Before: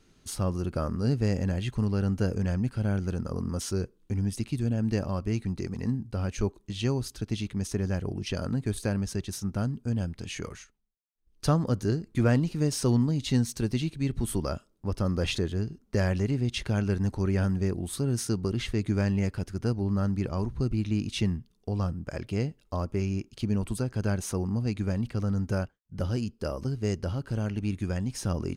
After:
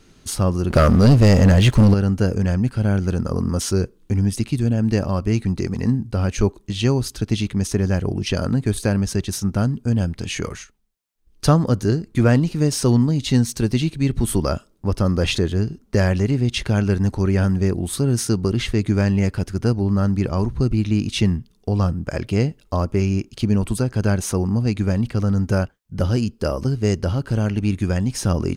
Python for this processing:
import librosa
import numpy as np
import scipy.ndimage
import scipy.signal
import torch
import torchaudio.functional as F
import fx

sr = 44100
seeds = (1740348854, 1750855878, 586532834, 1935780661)

p1 = fx.rider(x, sr, range_db=3, speed_s=0.5)
p2 = x + (p1 * 10.0 ** (-2.5 / 20.0))
p3 = fx.leveller(p2, sr, passes=3, at=(0.7, 1.94))
y = p3 * 10.0 ** (4.0 / 20.0)